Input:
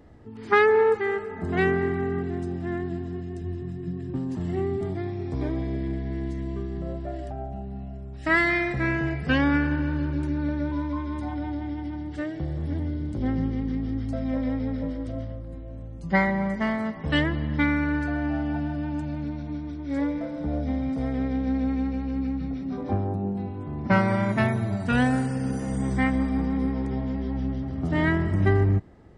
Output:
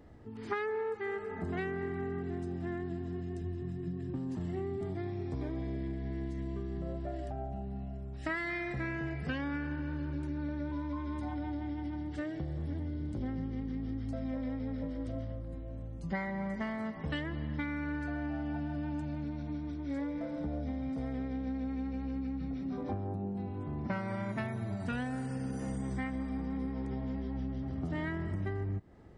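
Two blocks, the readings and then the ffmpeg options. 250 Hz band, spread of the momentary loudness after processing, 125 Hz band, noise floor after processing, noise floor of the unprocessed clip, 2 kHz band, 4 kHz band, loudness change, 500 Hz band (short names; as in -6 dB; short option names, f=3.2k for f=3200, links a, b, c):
-10.0 dB, 3 LU, -10.0 dB, -42 dBFS, -37 dBFS, -13.5 dB, -13.0 dB, -11.0 dB, -12.0 dB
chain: -af "acompressor=threshold=-29dB:ratio=6,volume=-4dB"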